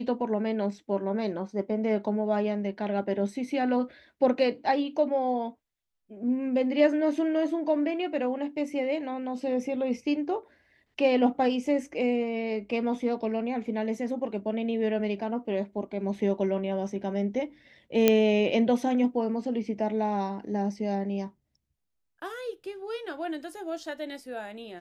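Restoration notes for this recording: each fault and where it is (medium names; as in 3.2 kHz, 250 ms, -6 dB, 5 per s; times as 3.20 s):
18.08 s: pop -6 dBFS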